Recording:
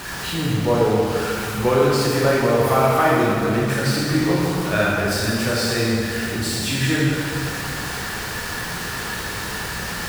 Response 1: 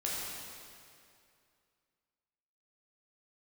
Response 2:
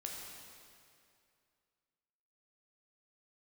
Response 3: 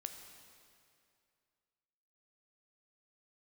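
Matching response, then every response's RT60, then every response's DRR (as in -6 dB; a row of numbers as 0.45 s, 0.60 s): 1; 2.4 s, 2.4 s, 2.4 s; -6.0 dB, -1.5 dB, 5.5 dB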